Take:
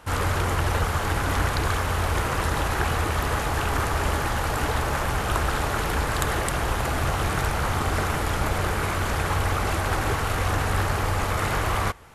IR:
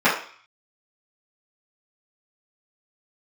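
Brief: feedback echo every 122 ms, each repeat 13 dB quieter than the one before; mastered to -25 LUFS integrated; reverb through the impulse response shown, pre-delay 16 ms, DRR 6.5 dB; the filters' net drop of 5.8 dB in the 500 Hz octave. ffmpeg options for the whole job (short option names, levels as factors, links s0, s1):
-filter_complex "[0:a]equalizer=f=500:t=o:g=-7.5,aecho=1:1:122|244|366:0.224|0.0493|0.0108,asplit=2[s0][s1];[1:a]atrim=start_sample=2205,adelay=16[s2];[s1][s2]afir=irnorm=-1:irlink=0,volume=0.0398[s3];[s0][s3]amix=inputs=2:normalize=0"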